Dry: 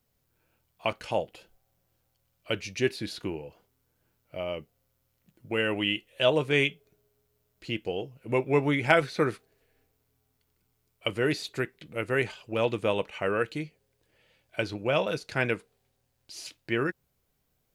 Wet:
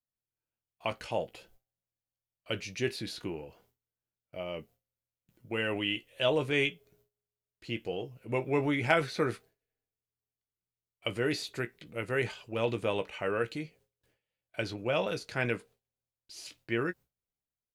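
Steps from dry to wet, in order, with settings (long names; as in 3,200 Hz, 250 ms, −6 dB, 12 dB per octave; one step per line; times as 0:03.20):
transient designer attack 0 dB, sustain +4 dB
noise gate with hold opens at −51 dBFS
double-tracking delay 17 ms −10.5 dB
level −4.5 dB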